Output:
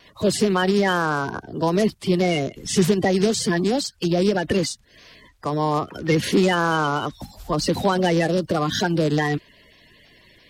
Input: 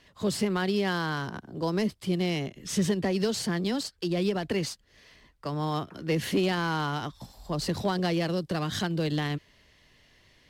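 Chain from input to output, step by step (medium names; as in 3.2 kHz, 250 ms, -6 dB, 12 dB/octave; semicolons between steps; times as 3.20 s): coarse spectral quantiser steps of 30 dB; vibrato 2.4 Hz 24 cents; trim +8.5 dB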